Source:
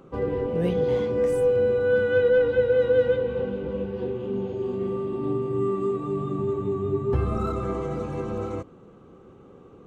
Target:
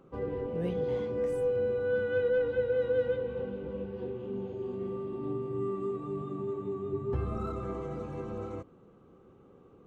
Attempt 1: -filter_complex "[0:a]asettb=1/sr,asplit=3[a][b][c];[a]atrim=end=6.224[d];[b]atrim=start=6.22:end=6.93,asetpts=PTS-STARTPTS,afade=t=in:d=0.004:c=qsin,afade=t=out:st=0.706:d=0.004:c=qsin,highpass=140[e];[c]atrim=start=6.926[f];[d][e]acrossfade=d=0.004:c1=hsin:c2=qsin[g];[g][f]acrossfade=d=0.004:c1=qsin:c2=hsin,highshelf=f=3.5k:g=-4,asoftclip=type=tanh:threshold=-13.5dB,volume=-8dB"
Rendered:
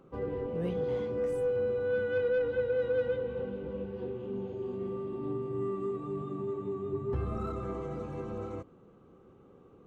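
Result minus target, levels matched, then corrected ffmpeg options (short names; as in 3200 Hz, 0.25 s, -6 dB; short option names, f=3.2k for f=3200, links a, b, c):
soft clip: distortion +17 dB
-filter_complex "[0:a]asettb=1/sr,asplit=3[a][b][c];[a]atrim=end=6.224[d];[b]atrim=start=6.22:end=6.93,asetpts=PTS-STARTPTS,afade=t=in:d=0.004:c=qsin,afade=t=out:st=0.706:d=0.004:c=qsin,highpass=140[e];[c]atrim=start=6.926[f];[d][e]acrossfade=d=0.004:c1=hsin:c2=qsin[g];[g][f]acrossfade=d=0.004:c1=qsin:c2=hsin,highshelf=f=3.5k:g=-4,asoftclip=type=tanh:threshold=-4dB,volume=-8dB"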